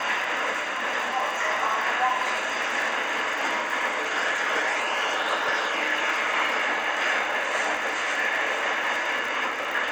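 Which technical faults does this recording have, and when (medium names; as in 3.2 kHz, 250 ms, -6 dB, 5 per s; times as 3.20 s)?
crackle 68 per s -30 dBFS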